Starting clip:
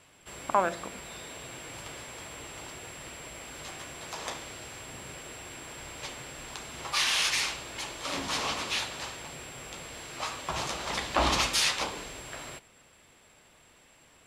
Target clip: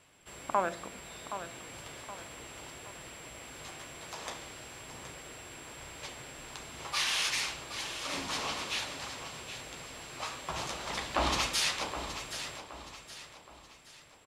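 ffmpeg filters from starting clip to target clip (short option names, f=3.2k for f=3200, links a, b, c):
-af "aecho=1:1:771|1542|2313|3084:0.299|0.122|0.0502|0.0206,volume=-4dB"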